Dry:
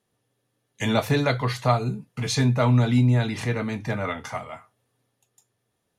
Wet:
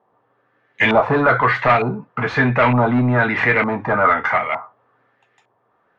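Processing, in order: overdrive pedal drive 22 dB, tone 4100 Hz, clips at -7.5 dBFS; LFO low-pass saw up 1.1 Hz 890–2300 Hz

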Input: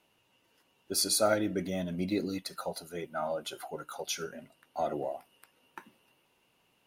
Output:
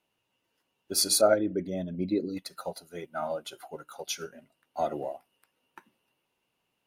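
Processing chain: 1.21–2.37 formant sharpening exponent 1.5; upward expander 1.5:1, over -51 dBFS; gain +6 dB

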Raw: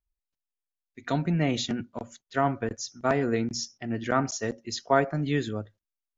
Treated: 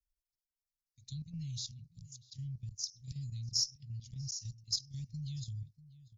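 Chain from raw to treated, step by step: Chebyshev band-stop 130–5500 Hz, order 4; band shelf 2900 Hz +16 dB; level quantiser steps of 10 dB; added harmonics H 4 -36 dB, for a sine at -18 dBFS; outdoor echo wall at 110 m, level -17 dB

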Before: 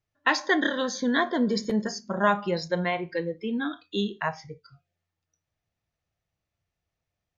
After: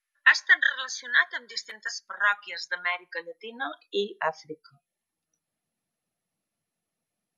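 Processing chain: reverb removal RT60 0.51 s; high-pass sweep 1700 Hz -> 210 Hz, 2.58–4.89; MP2 192 kbps 44100 Hz

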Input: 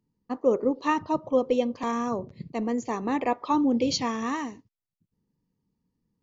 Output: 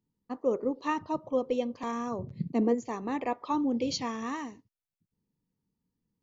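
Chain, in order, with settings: 2.18–2.73 bell 85 Hz -> 430 Hz +13 dB 1.5 oct; gain -5.5 dB

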